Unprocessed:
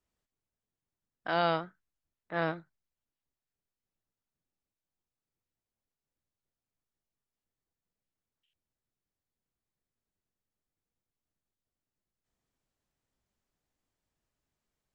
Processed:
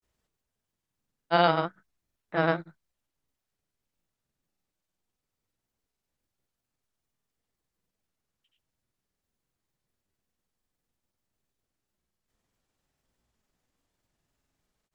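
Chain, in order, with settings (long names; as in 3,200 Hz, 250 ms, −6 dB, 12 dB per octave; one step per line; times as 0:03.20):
granular cloud 100 ms, grains 20 per second, pitch spread up and down by 0 semitones
level +8 dB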